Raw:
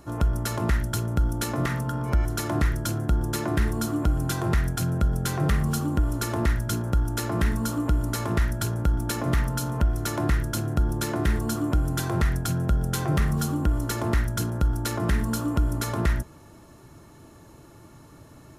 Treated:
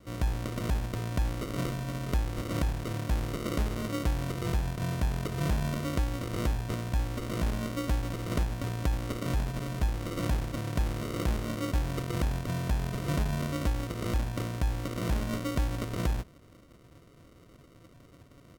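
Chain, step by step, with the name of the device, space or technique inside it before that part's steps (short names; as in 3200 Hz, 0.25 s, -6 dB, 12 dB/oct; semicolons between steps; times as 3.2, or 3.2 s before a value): crushed at another speed (playback speed 1.25×; sample-and-hold 42×; playback speed 0.8×); gain -6 dB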